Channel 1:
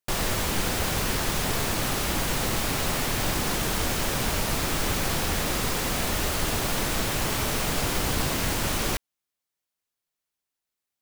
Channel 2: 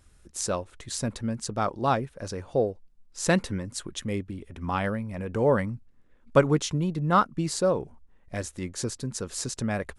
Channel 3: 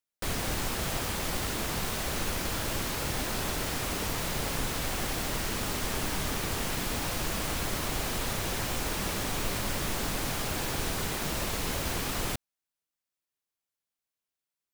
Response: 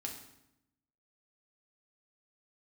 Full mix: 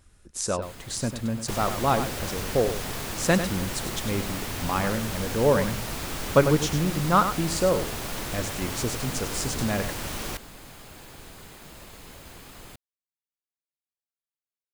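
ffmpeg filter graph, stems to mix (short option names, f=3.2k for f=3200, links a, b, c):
-filter_complex "[0:a]adelay=1400,volume=-6.5dB[a];[1:a]volume=1dB,asplit=2[b][c];[c]volume=-9.5dB[d];[2:a]bandreject=f=5.7k:w=12,adelay=400,volume=-13.5dB[e];[d]aecho=0:1:98:1[f];[a][b][e][f]amix=inputs=4:normalize=0"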